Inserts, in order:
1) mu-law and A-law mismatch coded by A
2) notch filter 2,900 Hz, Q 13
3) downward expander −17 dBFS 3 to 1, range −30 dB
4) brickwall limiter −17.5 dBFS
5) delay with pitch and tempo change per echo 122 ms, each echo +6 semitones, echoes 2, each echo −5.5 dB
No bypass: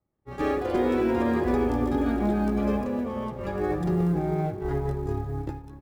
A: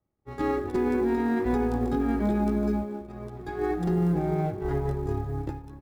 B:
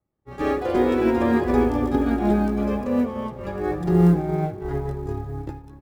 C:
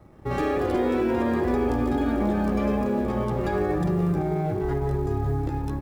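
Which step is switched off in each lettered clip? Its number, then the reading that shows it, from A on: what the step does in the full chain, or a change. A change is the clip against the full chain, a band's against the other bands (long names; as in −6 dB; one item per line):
5, change in crest factor −3.0 dB
4, average gain reduction 2.0 dB
3, change in momentary loudness spread −5 LU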